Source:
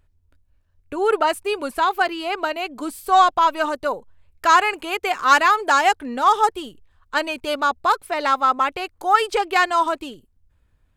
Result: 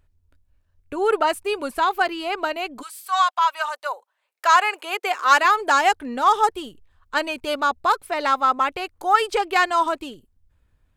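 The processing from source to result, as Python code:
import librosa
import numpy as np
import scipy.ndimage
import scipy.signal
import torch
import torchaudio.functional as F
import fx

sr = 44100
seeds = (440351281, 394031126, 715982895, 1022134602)

y = fx.highpass(x, sr, hz=fx.line((2.81, 1200.0), (5.43, 320.0)), slope=24, at=(2.81, 5.43), fade=0.02)
y = y * librosa.db_to_amplitude(-1.0)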